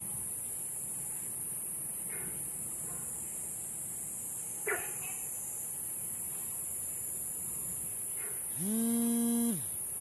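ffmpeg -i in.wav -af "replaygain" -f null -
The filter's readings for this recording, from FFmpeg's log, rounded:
track_gain = +16.6 dB
track_peak = 0.065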